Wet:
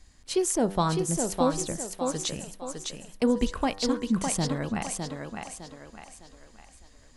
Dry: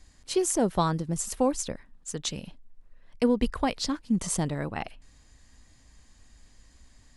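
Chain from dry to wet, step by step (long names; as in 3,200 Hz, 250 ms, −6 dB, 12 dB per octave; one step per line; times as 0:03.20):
hum removal 97.96 Hz, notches 19
on a send: feedback echo with a high-pass in the loop 607 ms, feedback 41%, high-pass 200 Hz, level −4 dB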